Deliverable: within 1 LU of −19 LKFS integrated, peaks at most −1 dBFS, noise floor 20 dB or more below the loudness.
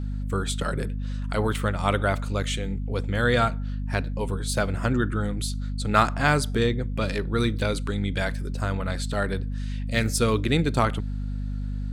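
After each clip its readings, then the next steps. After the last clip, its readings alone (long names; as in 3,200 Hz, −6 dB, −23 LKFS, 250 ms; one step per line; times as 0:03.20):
mains hum 50 Hz; hum harmonics up to 250 Hz; level of the hum −27 dBFS; integrated loudness −26.0 LKFS; sample peak −4.5 dBFS; target loudness −19.0 LKFS
→ hum removal 50 Hz, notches 5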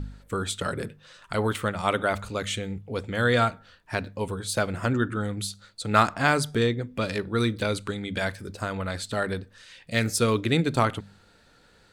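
mains hum none found; integrated loudness −27.0 LKFS; sample peak −4.0 dBFS; target loudness −19.0 LKFS
→ level +8 dB
brickwall limiter −1 dBFS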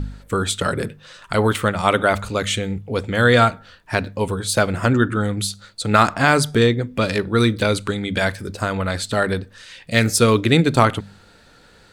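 integrated loudness −19.5 LKFS; sample peak −1.0 dBFS; background noise floor −50 dBFS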